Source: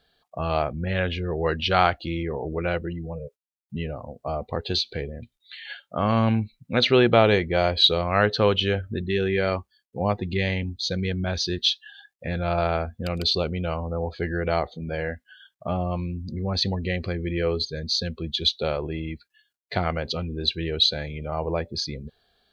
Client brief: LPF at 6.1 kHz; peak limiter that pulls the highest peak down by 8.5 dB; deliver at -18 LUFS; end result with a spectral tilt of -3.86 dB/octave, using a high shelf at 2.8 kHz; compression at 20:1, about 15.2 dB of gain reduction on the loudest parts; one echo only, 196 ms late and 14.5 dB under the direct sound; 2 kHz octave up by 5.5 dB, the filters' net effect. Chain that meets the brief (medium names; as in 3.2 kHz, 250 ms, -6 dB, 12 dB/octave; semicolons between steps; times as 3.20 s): low-pass 6.1 kHz; peaking EQ 2 kHz +8.5 dB; treble shelf 2.8 kHz -3.5 dB; compression 20:1, threshold -27 dBFS; peak limiter -22 dBFS; delay 196 ms -14.5 dB; trim +15.5 dB